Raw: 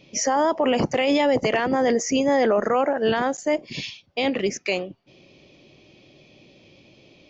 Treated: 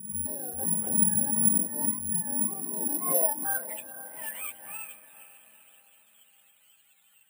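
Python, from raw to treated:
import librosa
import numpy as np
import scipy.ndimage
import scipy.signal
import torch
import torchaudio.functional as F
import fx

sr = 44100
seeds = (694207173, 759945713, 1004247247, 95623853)

p1 = fx.octave_mirror(x, sr, pivot_hz=690.0)
p2 = 10.0 ** (-24.0 / 20.0) * np.tanh(p1 / 10.0 ** (-24.0 / 20.0))
p3 = p1 + (p2 * librosa.db_to_amplitude(-7.0))
p4 = fx.filter_sweep_bandpass(p3, sr, from_hz=210.0, to_hz=2900.0, start_s=2.78, end_s=3.86, q=6.6)
p5 = p4 + fx.echo_diffused(p4, sr, ms=456, feedback_pct=48, wet_db=-13, dry=0)
p6 = (np.kron(scipy.signal.resample_poly(p5, 1, 4), np.eye(4)[0]) * 4)[:len(p5)]
p7 = fx.low_shelf(p6, sr, hz=200.0, db=-7.5)
y = fx.pre_swell(p7, sr, db_per_s=73.0)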